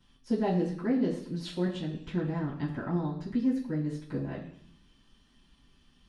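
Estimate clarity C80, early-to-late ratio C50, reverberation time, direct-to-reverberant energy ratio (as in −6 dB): 9.5 dB, 7.0 dB, 0.70 s, −11.5 dB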